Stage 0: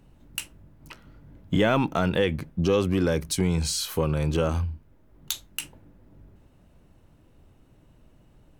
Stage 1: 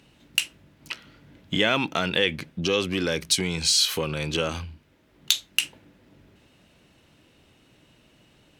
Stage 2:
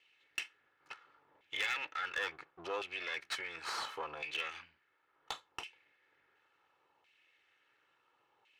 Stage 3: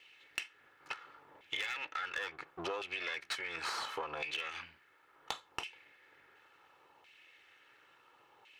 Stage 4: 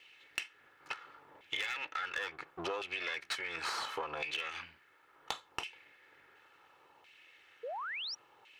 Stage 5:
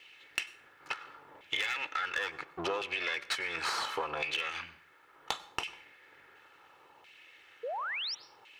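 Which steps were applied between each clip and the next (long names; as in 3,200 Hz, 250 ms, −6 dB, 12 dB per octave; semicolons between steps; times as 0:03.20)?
in parallel at +1.5 dB: downward compressor, threshold −31 dBFS, peak gain reduction 13 dB; on the sum: meter weighting curve D; level −4.5 dB
lower of the sound and its delayed copy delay 2.3 ms; auto-filter band-pass saw down 0.71 Hz 930–2,500 Hz; hard clipping −25.5 dBFS, distortion −18 dB; level −2.5 dB
downward compressor 10 to 1, threshold −45 dBFS, peak gain reduction 13.5 dB; level +9.5 dB
sound drawn into the spectrogram rise, 0:07.63–0:08.15, 440–5,900 Hz −41 dBFS; level +1 dB
dense smooth reverb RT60 0.56 s, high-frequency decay 0.75×, pre-delay 85 ms, DRR 18 dB; level +4 dB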